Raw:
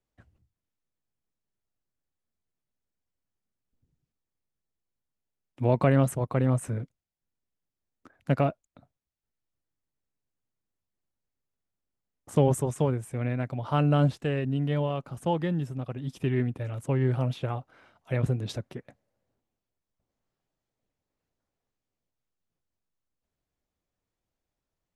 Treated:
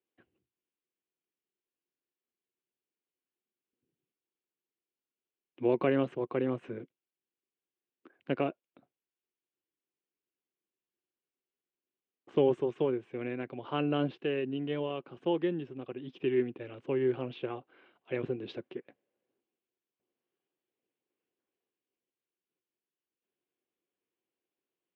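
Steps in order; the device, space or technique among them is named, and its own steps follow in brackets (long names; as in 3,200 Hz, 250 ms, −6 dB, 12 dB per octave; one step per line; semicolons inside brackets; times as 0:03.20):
phone earpiece (loudspeaker in its box 340–3,100 Hz, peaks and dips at 360 Hz +8 dB, 630 Hz −9 dB, 890 Hz −7 dB, 1,300 Hz −7 dB, 1,900 Hz −5 dB, 2,900 Hz +3 dB)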